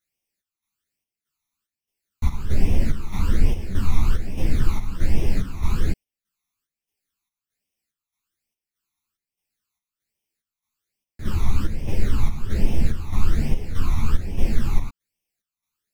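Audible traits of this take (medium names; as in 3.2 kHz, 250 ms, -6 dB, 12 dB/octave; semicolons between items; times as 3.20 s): phasing stages 12, 1.2 Hz, lowest notch 500–1400 Hz; chopped level 1.6 Hz, depth 60%, duty 65%; a shimmering, thickened sound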